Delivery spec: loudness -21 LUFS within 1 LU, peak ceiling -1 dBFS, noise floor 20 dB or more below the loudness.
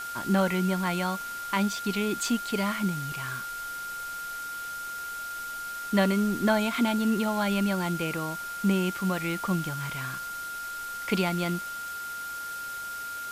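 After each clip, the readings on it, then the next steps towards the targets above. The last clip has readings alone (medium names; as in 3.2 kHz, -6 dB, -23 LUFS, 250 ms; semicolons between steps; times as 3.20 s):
steady tone 1.4 kHz; tone level -34 dBFS; noise floor -36 dBFS; noise floor target -49 dBFS; loudness -29.0 LUFS; peak level -12.0 dBFS; loudness target -21.0 LUFS
-> band-stop 1.4 kHz, Q 30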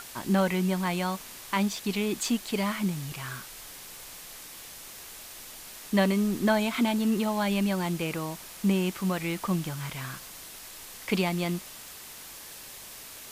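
steady tone not found; noise floor -45 dBFS; noise floor target -49 dBFS
-> noise reduction 6 dB, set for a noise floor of -45 dBFS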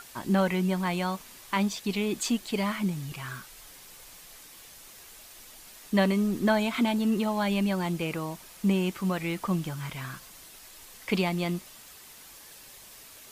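noise floor -50 dBFS; loudness -28.5 LUFS; peak level -12.5 dBFS; loudness target -21.0 LUFS
-> trim +7.5 dB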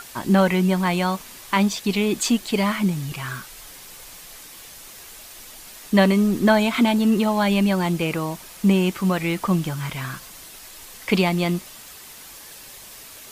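loudness -21.0 LUFS; peak level -5.0 dBFS; noise floor -42 dBFS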